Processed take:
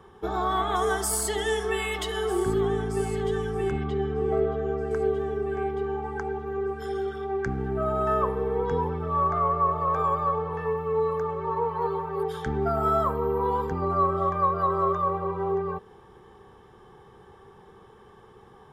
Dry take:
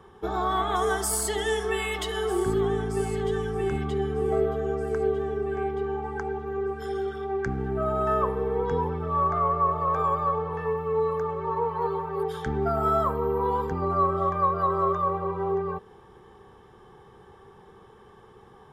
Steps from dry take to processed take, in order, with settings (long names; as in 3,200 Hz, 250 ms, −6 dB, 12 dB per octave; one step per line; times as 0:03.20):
0:03.71–0:04.91: high-frequency loss of the air 110 metres